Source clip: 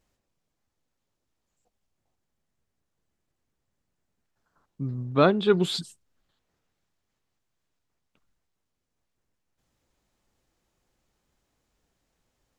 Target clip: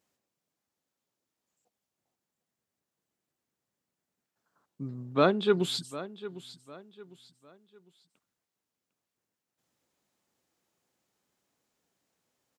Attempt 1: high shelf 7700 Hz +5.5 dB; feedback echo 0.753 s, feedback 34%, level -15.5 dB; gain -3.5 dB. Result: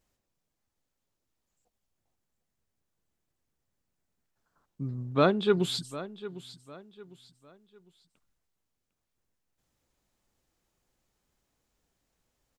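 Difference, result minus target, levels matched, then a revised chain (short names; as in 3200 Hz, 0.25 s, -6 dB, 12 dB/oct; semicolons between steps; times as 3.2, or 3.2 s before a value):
125 Hz band +3.0 dB
HPF 160 Hz 12 dB/oct; high shelf 7700 Hz +5.5 dB; feedback echo 0.753 s, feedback 34%, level -15.5 dB; gain -3.5 dB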